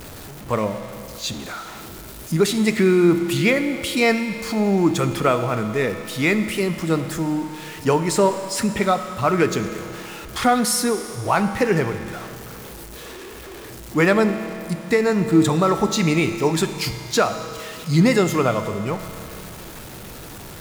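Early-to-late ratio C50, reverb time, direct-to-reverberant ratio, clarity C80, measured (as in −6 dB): 9.5 dB, 2.7 s, 8.5 dB, 10.0 dB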